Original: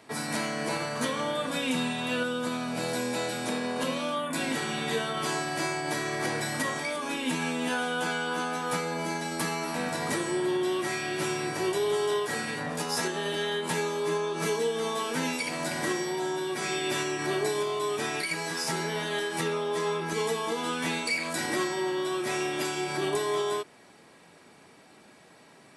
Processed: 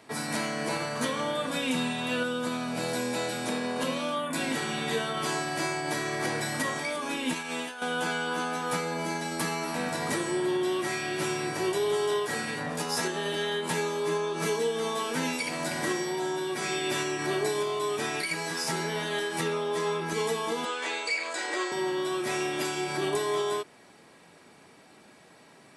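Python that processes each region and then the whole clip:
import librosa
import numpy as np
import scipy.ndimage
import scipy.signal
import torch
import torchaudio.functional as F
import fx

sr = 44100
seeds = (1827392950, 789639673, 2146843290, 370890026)

y = fx.chain(x, sr, fx.low_shelf(hz=340.0, db=-12.0),
    fx.over_compress(threshold_db=-35.0, ratio=-0.5), at=(7.33, 7.82))
y = fx.chain(y, sr, fx.cheby1_bandpass(low_hz=400.0, high_hz=7500.0, order=3),
    fx.notch(hz=5700.0, q=10.0), at=(20.65, 21.72))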